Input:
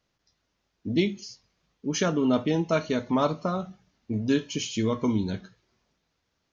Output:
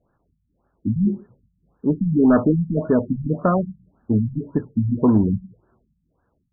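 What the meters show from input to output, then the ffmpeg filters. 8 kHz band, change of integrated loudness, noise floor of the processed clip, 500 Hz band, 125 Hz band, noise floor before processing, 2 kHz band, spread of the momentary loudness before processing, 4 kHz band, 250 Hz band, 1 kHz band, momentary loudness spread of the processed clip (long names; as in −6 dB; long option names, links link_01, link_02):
can't be measured, +6.5 dB, −71 dBFS, +4.0 dB, +9.5 dB, −77 dBFS, −3.0 dB, 13 LU, below −40 dB, +7.5 dB, +3.0 dB, 10 LU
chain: -af "aeval=exprs='0.299*sin(PI/2*1.78*val(0)/0.299)':channel_layout=same,afftfilt=real='re*lt(b*sr/1024,200*pow(1800/200,0.5+0.5*sin(2*PI*1.8*pts/sr)))':imag='im*lt(b*sr/1024,200*pow(1800/200,0.5+0.5*sin(2*PI*1.8*pts/sr)))':win_size=1024:overlap=0.75,volume=2dB"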